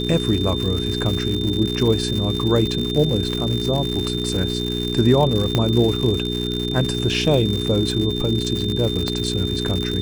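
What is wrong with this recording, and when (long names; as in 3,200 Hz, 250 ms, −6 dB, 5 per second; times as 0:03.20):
surface crackle 180 per second −23 dBFS
mains hum 60 Hz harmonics 7 −25 dBFS
whistle 3,600 Hz −27 dBFS
0:05.55: click −6 dBFS
0:09.08: click −9 dBFS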